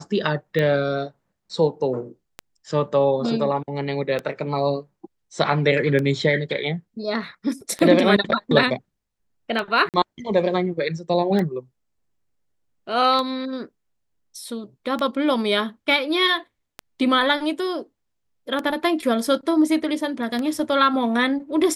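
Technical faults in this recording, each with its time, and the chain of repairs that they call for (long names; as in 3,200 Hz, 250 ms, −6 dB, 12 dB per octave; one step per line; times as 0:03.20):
scratch tick 33 1/3 rpm −13 dBFS
0:09.89–0:09.94: drop-out 48 ms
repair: click removal
repair the gap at 0:09.89, 48 ms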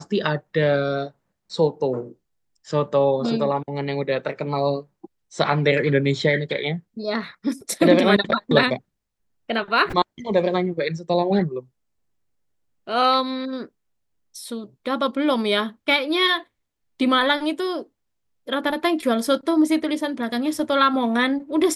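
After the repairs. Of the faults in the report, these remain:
none of them is left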